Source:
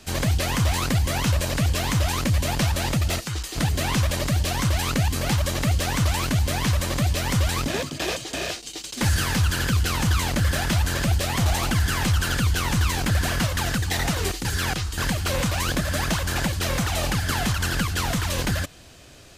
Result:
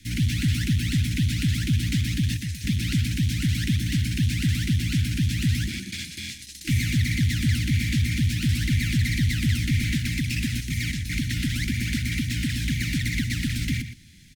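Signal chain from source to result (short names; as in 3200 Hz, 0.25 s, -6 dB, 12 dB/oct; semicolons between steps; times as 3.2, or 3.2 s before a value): rattling part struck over -23 dBFS, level -23 dBFS; elliptic band-stop 200–1400 Hz, stop band 40 dB; high shelf 4200 Hz -10.5 dB; outdoor echo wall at 27 m, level -10 dB; speed mistake 33 rpm record played at 45 rpm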